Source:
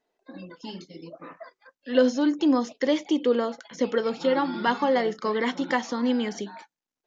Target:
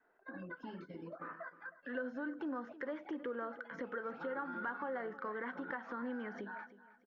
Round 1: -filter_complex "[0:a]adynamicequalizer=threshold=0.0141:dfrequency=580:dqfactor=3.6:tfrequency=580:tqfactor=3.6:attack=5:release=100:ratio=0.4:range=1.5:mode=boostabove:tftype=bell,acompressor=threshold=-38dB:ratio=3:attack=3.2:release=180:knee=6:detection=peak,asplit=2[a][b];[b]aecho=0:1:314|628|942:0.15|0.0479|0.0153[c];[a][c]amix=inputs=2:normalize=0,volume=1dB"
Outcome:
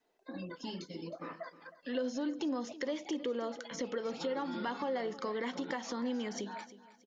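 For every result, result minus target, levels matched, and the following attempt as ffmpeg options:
compressor: peak gain reduction -7.5 dB; 2000 Hz band -6.5 dB
-filter_complex "[0:a]adynamicequalizer=threshold=0.0141:dfrequency=580:dqfactor=3.6:tfrequency=580:tqfactor=3.6:attack=5:release=100:ratio=0.4:range=1.5:mode=boostabove:tftype=bell,acompressor=threshold=-46.5dB:ratio=3:attack=3.2:release=180:knee=6:detection=peak,asplit=2[a][b];[b]aecho=0:1:314|628|942:0.15|0.0479|0.0153[c];[a][c]amix=inputs=2:normalize=0,volume=1dB"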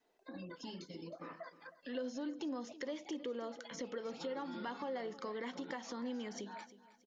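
2000 Hz band -6.5 dB
-filter_complex "[0:a]adynamicequalizer=threshold=0.0141:dfrequency=580:dqfactor=3.6:tfrequency=580:tqfactor=3.6:attack=5:release=100:ratio=0.4:range=1.5:mode=boostabove:tftype=bell,lowpass=f=1.5k:t=q:w=5.7,acompressor=threshold=-46.5dB:ratio=3:attack=3.2:release=180:knee=6:detection=peak,asplit=2[a][b];[b]aecho=0:1:314|628|942:0.15|0.0479|0.0153[c];[a][c]amix=inputs=2:normalize=0,volume=1dB"

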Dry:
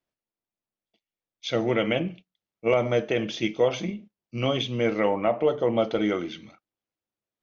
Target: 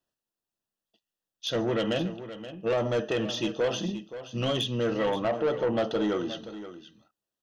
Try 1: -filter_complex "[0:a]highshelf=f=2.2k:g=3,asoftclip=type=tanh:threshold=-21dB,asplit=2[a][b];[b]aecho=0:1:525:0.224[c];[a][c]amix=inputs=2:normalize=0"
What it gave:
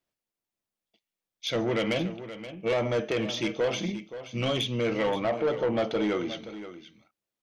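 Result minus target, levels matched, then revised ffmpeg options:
2000 Hz band +2.5 dB
-filter_complex "[0:a]asuperstop=centerf=2200:order=12:qfactor=4.4,highshelf=f=2.2k:g=3,asoftclip=type=tanh:threshold=-21dB,asplit=2[a][b];[b]aecho=0:1:525:0.224[c];[a][c]amix=inputs=2:normalize=0"

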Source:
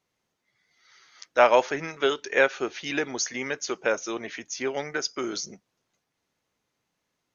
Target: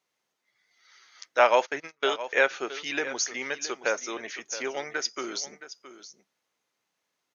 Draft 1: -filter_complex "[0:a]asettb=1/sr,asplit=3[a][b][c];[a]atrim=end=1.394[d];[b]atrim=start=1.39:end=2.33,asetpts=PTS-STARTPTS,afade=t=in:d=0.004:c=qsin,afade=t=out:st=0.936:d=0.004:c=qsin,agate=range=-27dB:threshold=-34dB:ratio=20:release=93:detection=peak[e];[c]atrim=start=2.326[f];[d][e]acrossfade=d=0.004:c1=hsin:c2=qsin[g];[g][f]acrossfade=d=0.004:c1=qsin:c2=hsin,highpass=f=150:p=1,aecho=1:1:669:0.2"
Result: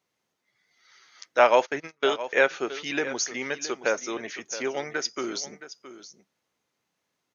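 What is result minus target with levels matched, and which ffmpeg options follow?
125 Hz band +7.0 dB
-filter_complex "[0:a]asettb=1/sr,asplit=3[a][b][c];[a]atrim=end=1.394[d];[b]atrim=start=1.39:end=2.33,asetpts=PTS-STARTPTS,afade=t=in:d=0.004:c=qsin,afade=t=out:st=0.936:d=0.004:c=qsin,agate=range=-27dB:threshold=-34dB:ratio=20:release=93:detection=peak[e];[c]atrim=start=2.326[f];[d][e]acrossfade=d=0.004:c1=hsin:c2=qsin[g];[g][f]acrossfade=d=0.004:c1=qsin:c2=hsin,highpass=f=530:p=1,aecho=1:1:669:0.2"

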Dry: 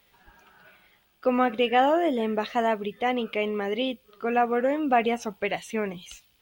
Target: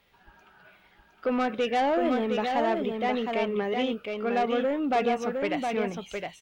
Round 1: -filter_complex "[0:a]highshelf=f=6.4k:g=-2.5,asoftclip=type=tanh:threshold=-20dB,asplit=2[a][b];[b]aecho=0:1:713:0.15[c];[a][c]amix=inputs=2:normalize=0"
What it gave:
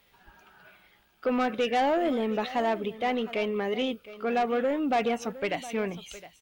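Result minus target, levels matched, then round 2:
echo-to-direct -12 dB; 8000 Hz band +4.0 dB
-filter_complex "[0:a]highshelf=f=6.4k:g=-11.5,asoftclip=type=tanh:threshold=-20dB,asplit=2[a][b];[b]aecho=0:1:713:0.596[c];[a][c]amix=inputs=2:normalize=0"

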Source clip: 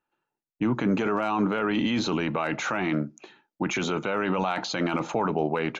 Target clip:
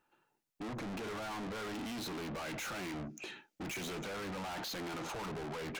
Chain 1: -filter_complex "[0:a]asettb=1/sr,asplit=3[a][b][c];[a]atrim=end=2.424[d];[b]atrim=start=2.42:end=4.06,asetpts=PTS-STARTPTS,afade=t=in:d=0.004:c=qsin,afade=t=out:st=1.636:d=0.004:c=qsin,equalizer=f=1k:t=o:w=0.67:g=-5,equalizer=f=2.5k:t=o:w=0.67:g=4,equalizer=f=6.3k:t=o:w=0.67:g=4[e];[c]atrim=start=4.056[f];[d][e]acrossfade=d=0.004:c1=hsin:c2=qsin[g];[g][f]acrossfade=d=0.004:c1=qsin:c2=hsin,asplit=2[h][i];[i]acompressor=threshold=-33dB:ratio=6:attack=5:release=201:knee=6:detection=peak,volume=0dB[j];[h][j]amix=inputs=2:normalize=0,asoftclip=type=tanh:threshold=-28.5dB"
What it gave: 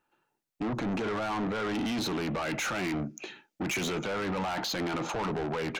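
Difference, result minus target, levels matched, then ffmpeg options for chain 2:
soft clip: distortion -4 dB
-filter_complex "[0:a]asettb=1/sr,asplit=3[a][b][c];[a]atrim=end=2.424[d];[b]atrim=start=2.42:end=4.06,asetpts=PTS-STARTPTS,afade=t=in:d=0.004:c=qsin,afade=t=out:st=1.636:d=0.004:c=qsin,equalizer=f=1k:t=o:w=0.67:g=-5,equalizer=f=2.5k:t=o:w=0.67:g=4,equalizer=f=6.3k:t=o:w=0.67:g=4[e];[c]atrim=start=4.056[f];[d][e]acrossfade=d=0.004:c1=hsin:c2=qsin[g];[g][f]acrossfade=d=0.004:c1=qsin:c2=hsin,asplit=2[h][i];[i]acompressor=threshold=-33dB:ratio=6:attack=5:release=201:knee=6:detection=peak,volume=0dB[j];[h][j]amix=inputs=2:normalize=0,asoftclip=type=tanh:threshold=-40dB"

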